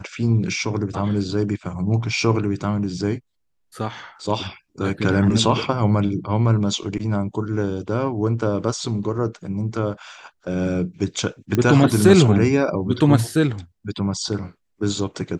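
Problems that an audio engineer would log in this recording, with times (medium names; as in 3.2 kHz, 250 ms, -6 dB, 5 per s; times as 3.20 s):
11.55 s: pop -8 dBFS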